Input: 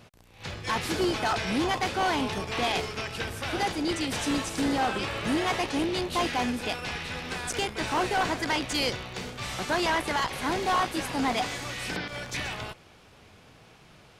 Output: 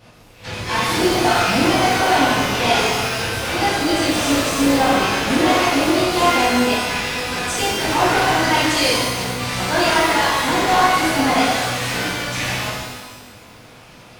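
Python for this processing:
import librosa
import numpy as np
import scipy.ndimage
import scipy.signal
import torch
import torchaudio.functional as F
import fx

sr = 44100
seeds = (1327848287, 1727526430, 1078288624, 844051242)

y = fx.rev_shimmer(x, sr, seeds[0], rt60_s=1.3, semitones=12, shimmer_db=-8, drr_db=-10.0)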